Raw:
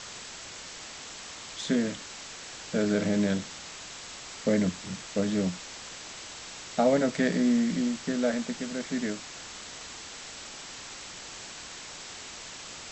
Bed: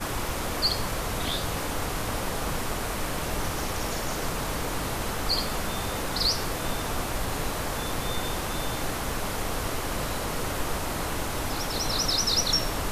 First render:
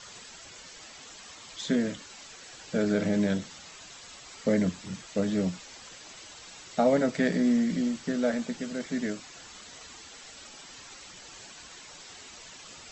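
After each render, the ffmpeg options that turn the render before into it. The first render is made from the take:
-af "afftdn=nr=9:nf=-43"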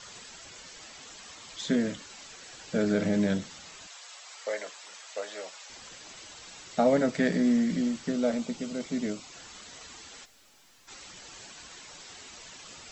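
-filter_complex "[0:a]asettb=1/sr,asplit=3[s0][s1][s2];[s0]atrim=end=3.874[s3];[s1]atrim=start=3.87:end=5.7,asetpts=PTS-STARTPTS,afade=t=in:d=0.004:c=qsin,afade=t=out:st=1.826:d=0.004:c=qsin,highpass=f=570:w=0.5412,highpass=f=570:w=1.3066[s4];[s2]atrim=start=5.696[s5];[s3][s4]acrossfade=d=0.004:c1=hsin:c2=qsin[s6];[s6][s5]acrossfade=d=0.004:c1=qsin:c2=hsin,asettb=1/sr,asplit=3[s7][s8][s9];[s7]atrim=end=8.104[s10];[s8]atrim=start=8.1:end=9.32,asetpts=PTS-STARTPTS,afade=t=in:d=0.004:c=qsin,afade=t=out:st=1.216:d=0.004:c=qsin,equalizer=f=1700:t=o:w=0.28:g=-12[s11];[s9]atrim=start=9.316[s12];[s10][s11]acrossfade=d=0.004:c1=hsin:c2=qsin[s13];[s13][s12]acrossfade=d=0.004:c1=qsin:c2=hsin,asplit=3[s14][s15][s16];[s14]afade=t=out:st=10.24:d=0.02[s17];[s15]aeval=exprs='(tanh(891*val(0)+0.6)-tanh(0.6))/891':c=same,afade=t=in:st=10.24:d=0.02,afade=t=out:st=10.87:d=0.02[s18];[s16]afade=t=in:st=10.87:d=0.02[s19];[s17][s18][s19]amix=inputs=3:normalize=0"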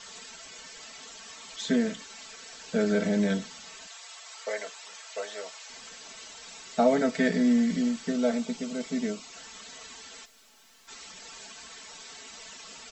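-af "lowshelf=f=200:g=-6.5,aecho=1:1:4.5:0.68"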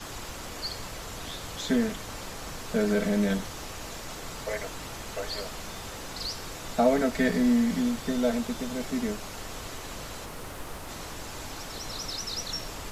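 -filter_complex "[1:a]volume=0.316[s0];[0:a][s0]amix=inputs=2:normalize=0"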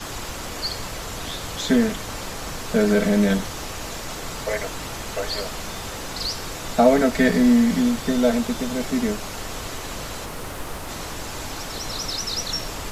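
-af "volume=2.24"

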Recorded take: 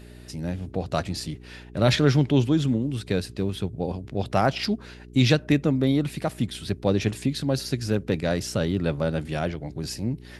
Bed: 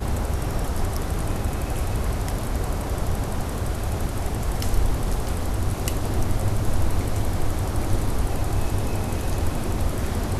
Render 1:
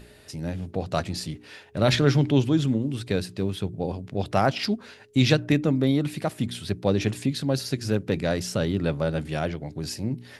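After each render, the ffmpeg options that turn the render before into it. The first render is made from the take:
-af "bandreject=f=60:t=h:w=4,bandreject=f=120:t=h:w=4,bandreject=f=180:t=h:w=4,bandreject=f=240:t=h:w=4,bandreject=f=300:t=h:w=4,bandreject=f=360:t=h:w=4"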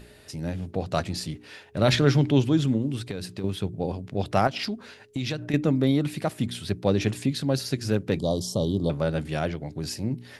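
-filter_complex "[0:a]asettb=1/sr,asplit=3[s0][s1][s2];[s0]atrim=end=2.994[s3];[s1]atrim=start=2.99:end=3.44,asetpts=PTS-STARTPTS,afade=t=in:d=0.004:c=qsin,afade=t=out:st=0.446:d=0.004:c=qsin,acompressor=threshold=0.0447:ratio=12:attack=3.2:release=140:knee=1:detection=peak[s4];[s2]atrim=start=3.436[s5];[s3][s4]acrossfade=d=0.004:c1=hsin:c2=qsin[s6];[s6][s5]acrossfade=d=0.004:c1=qsin:c2=hsin,asettb=1/sr,asplit=3[s7][s8][s9];[s7]atrim=end=4.474[s10];[s8]atrim=start=4.47:end=5.54,asetpts=PTS-STARTPTS,afade=t=in:d=0.004:c=qsin,afade=t=out:st=1.066:d=0.004:c=qsin,acompressor=threshold=0.0501:ratio=5:attack=3.2:release=140:knee=1:detection=peak[s11];[s9]atrim=start=5.536[s12];[s10][s11]acrossfade=d=0.004:c1=hsin:c2=qsin[s13];[s13][s12]acrossfade=d=0.004:c1=qsin:c2=hsin,asettb=1/sr,asplit=3[s14][s15][s16];[s14]atrim=end=8.194[s17];[s15]atrim=start=8.19:end=8.9,asetpts=PTS-STARTPTS,afade=t=in:d=0.004:c=qsin,afade=t=out:st=0.706:d=0.004:c=qsin,asuperstop=centerf=1900:order=20:qfactor=1[s18];[s16]atrim=start=8.896[s19];[s17][s18]acrossfade=d=0.004:c1=hsin:c2=qsin[s20];[s20][s19]acrossfade=d=0.004:c1=qsin:c2=hsin"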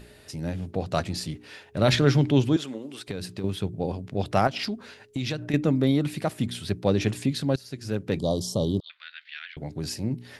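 -filter_complex "[0:a]asettb=1/sr,asplit=3[s0][s1][s2];[s0]atrim=end=2.564[s3];[s1]atrim=start=2.56:end=3.08,asetpts=PTS-STARTPTS,afade=t=in:d=0.004:c=qsin,afade=t=out:st=0.516:d=0.004:c=qsin,highpass=480[s4];[s2]atrim=start=3.076[s5];[s3][s4]acrossfade=d=0.004:c1=hsin:c2=qsin[s6];[s6][s5]acrossfade=d=0.004:c1=qsin:c2=hsin,asettb=1/sr,asplit=3[s7][s8][s9];[s7]atrim=end=8.804[s10];[s8]atrim=start=8.8:end=9.57,asetpts=PTS-STARTPTS,afade=t=in:d=0.004:c=qsin,afade=t=out:st=0.766:d=0.004:c=qsin,asuperpass=centerf=2600:order=8:qfactor=1[s11];[s9]atrim=start=9.566[s12];[s10][s11]acrossfade=d=0.004:c1=hsin:c2=qsin[s13];[s13][s12]acrossfade=d=0.004:c1=qsin:c2=hsin,asplit=2[s14][s15];[s14]atrim=end=7.56,asetpts=PTS-STARTPTS,afade=t=out:st=7.556:d=0.004:c=hsin:silence=0.125893[s16];[s15]atrim=start=7.56,asetpts=PTS-STARTPTS,afade=t=in:d=0.68:silence=0.125893[s17];[s16][s17]concat=n=2:v=0:a=1"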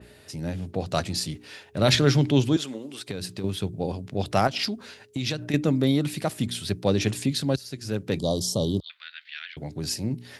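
-af "highpass=f=57:w=0.5412,highpass=f=57:w=1.3066,adynamicequalizer=threshold=0.00631:dfrequency=3100:dqfactor=0.7:tfrequency=3100:tqfactor=0.7:attack=5:release=100:ratio=0.375:range=3:mode=boostabove:tftype=highshelf"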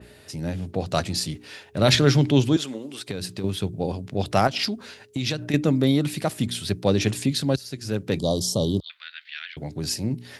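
-af "volume=1.26"

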